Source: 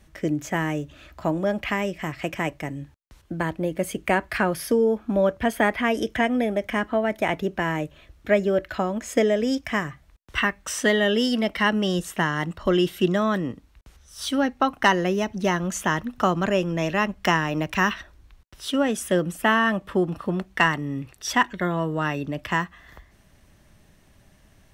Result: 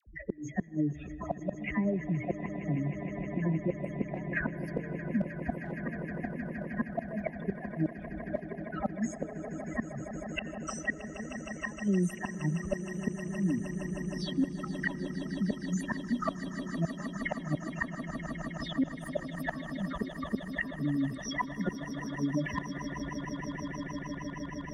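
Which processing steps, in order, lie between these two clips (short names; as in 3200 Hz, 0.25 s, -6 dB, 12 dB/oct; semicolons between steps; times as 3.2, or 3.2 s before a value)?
spectral contrast raised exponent 3.2; bell 8200 Hz -9.5 dB 2.3 oct; dispersion lows, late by 66 ms, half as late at 930 Hz; one-sided clip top -16 dBFS; rotary speaker horn 0.65 Hz, later 7.5 Hz, at 12.63; flipped gate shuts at -20 dBFS, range -30 dB; swelling echo 0.156 s, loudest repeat 8, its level -16 dB; on a send at -21 dB: reverb RT60 2.6 s, pre-delay 78 ms; on the sum: three-band squash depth 40%; gain +1.5 dB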